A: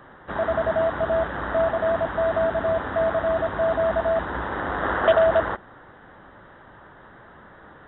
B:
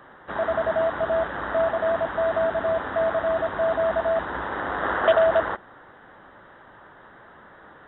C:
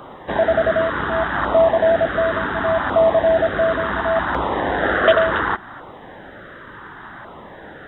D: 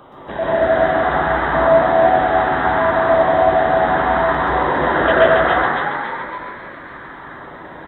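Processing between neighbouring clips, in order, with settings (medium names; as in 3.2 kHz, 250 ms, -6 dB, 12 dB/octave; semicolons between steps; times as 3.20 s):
bass shelf 210 Hz -8 dB
in parallel at -1.5 dB: compression, threshold -31 dBFS, peak gain reduction 16.5 dB; on the sum: LFO notch saw down 0.69 Hz 430–1800 Hz; trim +7.5 dB
on a send: frequency-shifting echo 278 ms, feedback 50%, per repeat +87 Hz, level -4 dB; on the sum: plate-style reverb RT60 0.64 s, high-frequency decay 0.45×, pre-delay 115 ms, DRR -5.5 dB; trim -5.5 dB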